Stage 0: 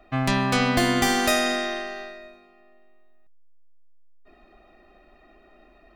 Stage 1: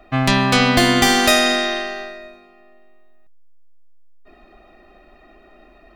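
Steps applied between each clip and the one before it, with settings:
dynamic equaliser 3,600 Hz, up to +4 dB, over −41 dBFS, Q 1.1
level +6 dB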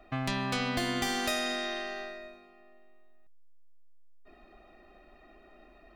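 downward compressor 2 to 1, threshold −27 dBFS, peak gain reduction 9.5 dB
level −8 dB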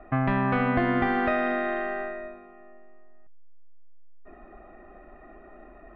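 low-pass filter 1,900 Hz 24 dB per octave
level +8.5 dB

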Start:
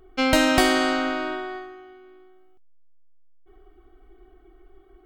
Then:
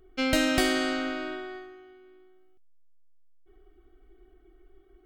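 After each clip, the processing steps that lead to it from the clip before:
parametric band 930 Hz −11 dB 0.6 octaves
level −4.5 dB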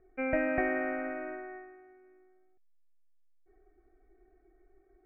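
Chebyshev low-pass with heavy ripple 2,500 Hz, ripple 9 dB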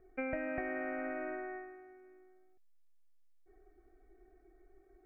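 downward compressor 6 to 1, threshold −36 dBFS, peak gain reduction 11 dB
level +1 dB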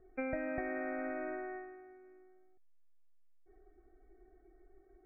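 high-frequency loss of the air 280 metres
spectral peaks only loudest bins 64
level +1 dB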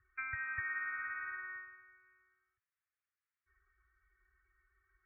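inverse Chebyshev band-stop filter 200–740 Hz, stop band 40 dB
loudspeaker in its box 130–2,100 Hz, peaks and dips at 140 Hz −10 dB, 390 Hz +5 dB, 570 Hz −10 dB
level +8.5 dB

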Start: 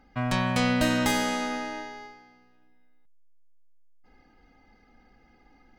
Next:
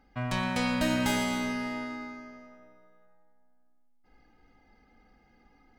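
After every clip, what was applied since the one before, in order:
dense smooth reverb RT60 2.7 s, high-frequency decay 0.55×, pre-delay 0 ms, DRR 3.5 dB
level −4.5 dB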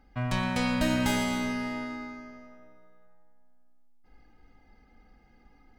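low-shelf EQ 110 Hz +7 dB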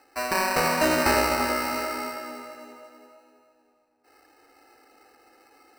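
Butterworth high-pass 310 Hz 48 dB per octave
decimation without filtering 13×
tape delay 329 ms, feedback 50%, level −5.5 dB, low-pass 1,300 Hz
level +8.5 dB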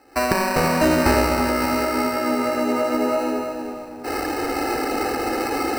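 camcorder AGC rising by 56 dB per second
low-shelf EQ 450 Hz +11 dB

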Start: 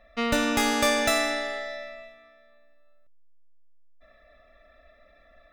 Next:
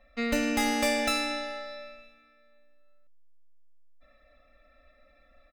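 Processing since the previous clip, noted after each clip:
comb filter 3.8 ms, depth 91%
level −6.5 dB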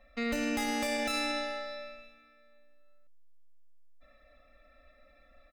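brickwall limiter −23 dBFS, peak gain reduction 9.5 dB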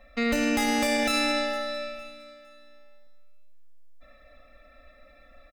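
repeating echo 458 ms, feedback 34%, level −18.5 dB
level +7 dB

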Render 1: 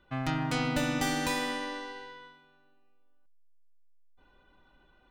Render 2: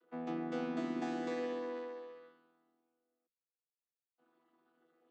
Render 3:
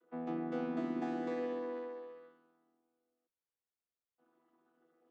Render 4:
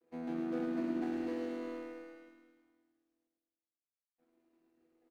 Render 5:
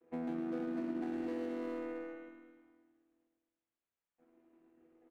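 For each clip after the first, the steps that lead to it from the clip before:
channel vocoder with a chord as carrier bare fifth, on E3; high-pass with resonance 390 Hz, resonance Q 4.8; level −5 dB
high-shelf EQ 2,700 Hz −11.5 dB; level +1 dB
running median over 41 samples; on a send: repeating echo 106 ms, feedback 60%, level −5 dB
adaptive Wiener filter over 9 samples; downward compressor 4 to 1, threshold −43 dBFS, peak gain reduction 10.5 dB; level +6.5 dB

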